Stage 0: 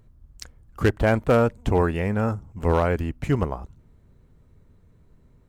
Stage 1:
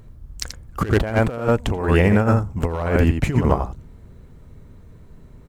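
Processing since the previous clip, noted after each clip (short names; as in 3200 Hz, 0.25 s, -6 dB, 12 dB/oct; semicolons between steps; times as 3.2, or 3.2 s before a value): echo 83 ms -7.5 dB; negative-ratio compressor -24 dBFS, ratio -0.5; gain +7 dB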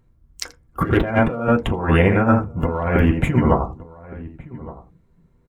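on a send at -1.5 dB: reverb RT60 0.15 s, pre-delay 3 ms; on the sum: spectral noise reduction 15 dB; outdoor echo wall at 200 m, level -18 dB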